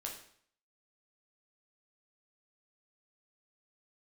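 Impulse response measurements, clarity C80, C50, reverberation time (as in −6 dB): 10.0 dB, 6.5 dB, 0.60 s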